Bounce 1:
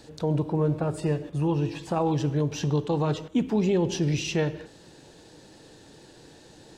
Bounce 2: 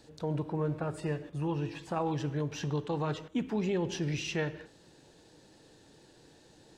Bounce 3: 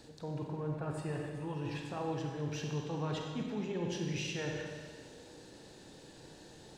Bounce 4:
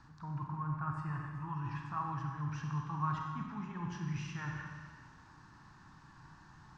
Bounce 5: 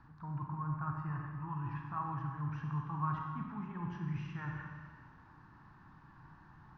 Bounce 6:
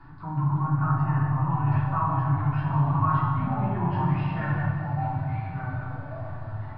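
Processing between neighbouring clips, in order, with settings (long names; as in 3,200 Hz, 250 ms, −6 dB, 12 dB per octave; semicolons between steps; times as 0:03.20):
dynamic equaliser 1,700 Hz, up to +7 dB, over −48 dBFS, Q 0.96; level −8 dB
reversed playback; downward compressor, threshold −39 dBFS, peak gain reduction 11.5 dB; reversed playback; convolution reverb RT60 1.8 s, pre-delay 31 ms, DRR 1.5 dB; level +2.5 dB
drawn EQ curve 150 Hz 0 dB, 340 Hz −14 dB, 500 Hz −29 dB, 1,100 Hz +11 dB, 2,100 Hz −6 dB, 3,700 Hz −17 dB, 5,600 Hz −10 dB, 11,000 Hz −29 dB; level +1.5 dB
Bessel low-pass filter 1,900 Hz, order 2
downsampling to 11,025 Hz; delay with pitch and tempo change per echo 346 ms, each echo −3 semitones, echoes 3, each echo −6 dB; rectangular room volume 170 cubic metres, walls furnished, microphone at 3.3 metres; level +5 dB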